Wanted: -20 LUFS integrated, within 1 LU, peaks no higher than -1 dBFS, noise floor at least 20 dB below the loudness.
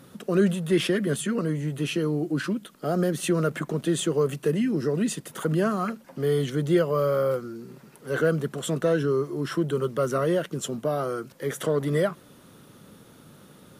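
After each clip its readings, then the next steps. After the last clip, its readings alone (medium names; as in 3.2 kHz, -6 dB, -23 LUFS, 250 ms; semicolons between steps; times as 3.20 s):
loudness -26.0 LUFS; peak level -11.0 dBFS; loudness target -20.0 LUFS
-> trim +6 dB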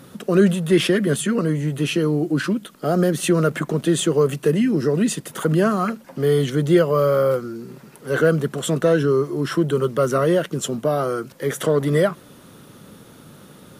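loudness -20.0 LUFS; peak level -5.0 dBFS; noise floor -46 dBFS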